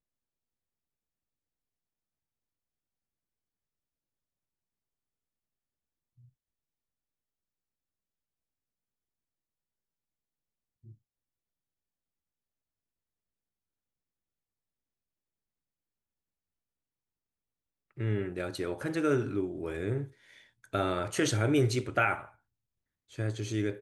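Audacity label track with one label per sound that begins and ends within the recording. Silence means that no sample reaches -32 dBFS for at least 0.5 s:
18.000000	20.040000	sound
20.740000	22.180000	sound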